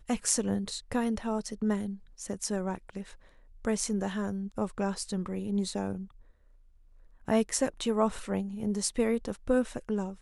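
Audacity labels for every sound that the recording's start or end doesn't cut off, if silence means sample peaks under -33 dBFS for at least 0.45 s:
3.650000	6.020000	sound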